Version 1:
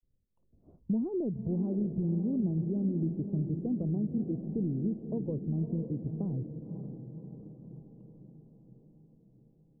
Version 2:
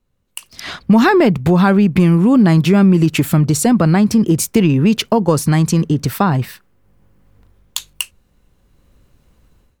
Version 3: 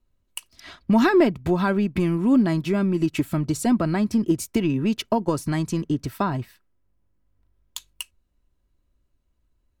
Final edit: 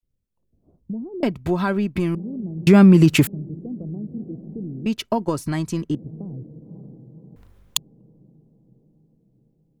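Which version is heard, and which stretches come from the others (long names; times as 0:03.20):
1
0:01.23–0:02.15: punch in from 3
0:02.67–0:03.27: punch in from 2
0:04.86–0:05.95: punch in from 3
0:07.36–0:07.77: punch in from 2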